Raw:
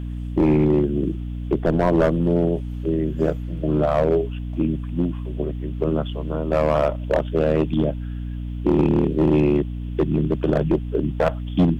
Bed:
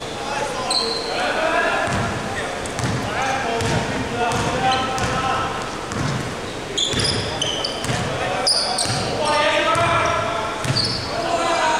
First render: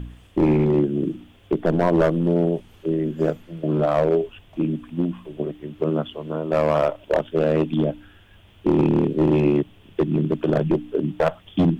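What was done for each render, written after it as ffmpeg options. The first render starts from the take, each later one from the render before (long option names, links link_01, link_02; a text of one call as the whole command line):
ffmpeg -i in.wav -af "bandreject=frequency=60:width_type=h:width=4,bandreject=frequency=120:width_type=h:width=4,bandreject=frequency=180:width_type=h:width=4,bandreject=frequency=240:width_type=h:width=4,bandreject=frequency=300:width_type=h:width=4" out.wav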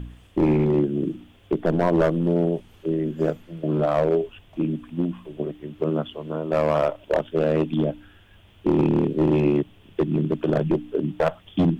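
ffmpeg -i in.wav -af "volume=-1.5dB" out.wav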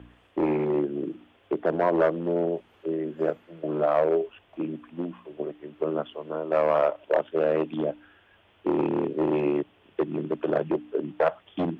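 ffmpeg -i in.wav -filter_complex "[0:a]highpass=47,acrossover=split=330 2800:gain=0.178 1 0.178[link_01][link_02][link_03];[link_01][link_02][link_03]amix=inputs=3:normalize=0" out.wav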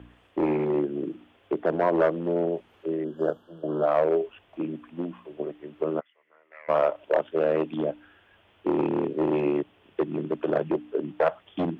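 ffmpeg -i in.wav -filter_complex "[0:a]asettb=1/sr,asplit=3[link_01][link_02][link_03];[link_01]atrim=end=3.044[link_04];[link_02]atrim=start=3.04:end=3.86,asetpts=PTS-STARTPTS,afade=type=in:duration=0.004:curve=qsin,afade=type=out:start_time=0.816:duration=0.004:curve=qsin,asuperstop=centerf=2200:order=12:qfactor=1.9[link_05];[link_03]atrim=start=3.856[link_06];[link_04][link_05]acrossfade=duration=0.004:curve1=hsin:curve2=qsin[link_07];[link_07][link_06]acrossfade=duration=0.004:curve1=qsin:curve2=hsin,asplit=3[link_08][link_09][link_10];[link_08]afade=type=out:start_time=5.99:duration=0.02[link_11];[link_09]bandpass=frequency=2000:width_type=q:width=11,afade=type=in:start_time=5.99:duration=0.02,afade=type=out:start_time=6.68:duration=0.02[link_12];[link_10]afade=type=in:start_time=6.68:duration=0.02[link_13];[link_11][link_12][link_13]amix=inputs=3:normalize=0" out.wav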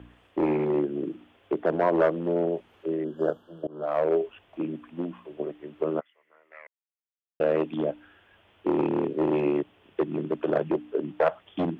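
ffmpeg -i in.wav -filter_complex "[0:a]asplit=4[link_01][link_02][link_03][link_04];[link_01]atrim=end=3.67,asetpts=PTS-STARTPTS,afade=type=out:start_time=3.666:duration=0.004:curve=hsin:silence=0.0630957[link_05];[link_02]atrim=start=3.67:end=6.67,asetpts=PTS-STARTPTS,afade=type=in:duration=0.46:silence=0.0630957,afade=type=out:start_time=2.996:duration=0.004:curve=hsin[link_06];[link_03]atrim=start=6.67:end=7.4,asetpts=PTS-STARTPTS,volume=0[link_07];[link_04]atrim=start=7.4,asetpts=PTS-STARTPTS,afade=type=in:duration=0.004:curve=hsin[link_08];[link_05][link_06][link_07][link_08]concat=n=4:v=0:a=1" out.wav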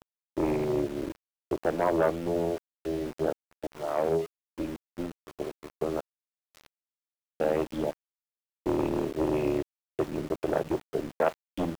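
ffmpeg -i in.wav -af "aeval=exprs='val(0)*gte(abs(val(0)),0.015)':channel_layout=same,tremolo=f=250:d=0.621" out.wav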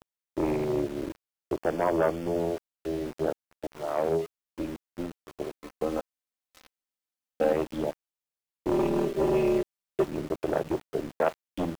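ffmpeg -i in.wav -filter_complex "[0:a]asettb=1/sr,asplit=3[link_01][link_02][link_03];[link_01]atrim=end=1.564[link_04];[link_02]atrim=start=1.56:end=2.4,asetpts=PTS-STARTPTS,afade=type=in:duration=0.004:curve=qsin,afade=type=out:start_time=0.836:duration=0.004:curve=qsin,asuperstop=centerf=3900:order=8:qfactor=7.5[link_05];[link_03]atrim=start=2.396[link_06];[link_04][link_05]acrossfade=duration=0.004:curve1=hsin:curve2=qsin[link_07];[link_07][link_06]acrossfade=duration=0.004:curve1=qsin:curve2=hsin,asettb=1/sr,asplit=3[link_08][link_09][link_10];[link_08]atrim=end=5.614[link_11];[link_09]atrim=start=5.61:end=7.53,asetpts=PTS-STARTPTS,afade=type=in:duration=0.004:curve=qsin,afade=type=out:start_time=1.916:duration=0.004:curve=qsin,aecho=1:1:3.9:0.65,atrim=end_sample=84672[link_12];[link_10]atrim=start=7.526[link_13];[link_11][link_12]acrossfade=duration=0.004:curve1=hsin:curve2=qsin[link_14];[link_14][link_13]acrossfade=duration=0.004:curve1=qsin:curve2=hsin,asettb=1/sr,asplit=3[link_15][link_16][link_17];[link_15]atrim=end=8.714[link_18];[link_16]atrim=start=8.71:end=10.05,asetpts=PTS-STARTPTS,afade=type=in:duration=0.004:curve=qsin,afade=type=out:start_time=1.336:duration=0.004:curve=qsin,aecho=1:1:5.1:0.88,atrim=end_sample=59094[link_19];[link_17]atrim=start=10.046[link_20];[link_18][link_19]acrossfade=duration=0.004:curve1=hsin:curve2=qsin[link_21];[link_21][link_20]acrossfade=duration=0.004:curve1=qsin:curve2=hsin" out.wav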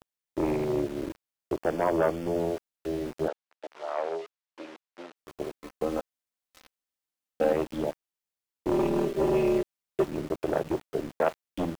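ffmpeg -i in.wav -filter_complex "[0:a]asettb=1/sr,asplit=3[link_01][link_02][link_03];[link_01]atrim=end=3.284[link_04];[link_02]atrim=start=3.28:end=5.16,asetpts=PTS-STARTPTS,afade=type=in:duration=0.004:curve=qsin,afade=type=out:start_time=1.876:duration=0.004:curve=qsin,highpass=600,lowpass=5000[link_05];[link_03]atrim=start=5.156[link_06];[link_04][link_05]acrossfade=duration=0.004:curve1=hsin:curve2=qsin[link_07];[link_07][link_06]acrossfade=duration=0.004:curve1=qsin:curve2=hsin" out.wav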